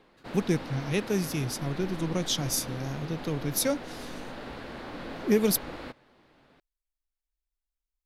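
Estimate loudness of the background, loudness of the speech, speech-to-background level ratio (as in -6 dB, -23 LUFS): -40.5 LUFS, -29.5 LUFS, 11.0 dB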